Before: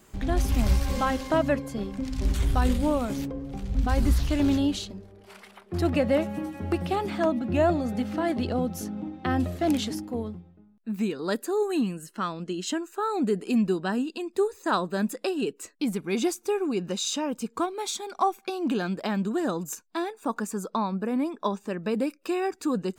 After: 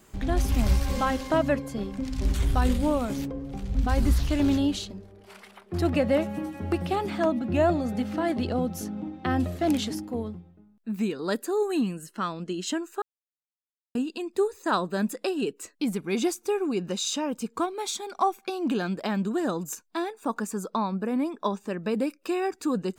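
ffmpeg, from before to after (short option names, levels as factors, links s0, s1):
-filter_complex "[0:a]asplit=3[s0][s1][s2];[s0]atrim=end=13.02,asetpts=PTS-STARTPTS,afade=t=out:st=13.016:d=0.004:c=hsin[s3];[s1]atrim=start=13.02:end=13.95,asetpts=PTS-STARTPTS,volume=0[s4];[s2]atrim=start=13.95,asetpts=PTS-STARTPTS,afade=t=in:d=0.004:c=hsin[s5];[s3][s4][s5]concat=n=3:v=0:a=1"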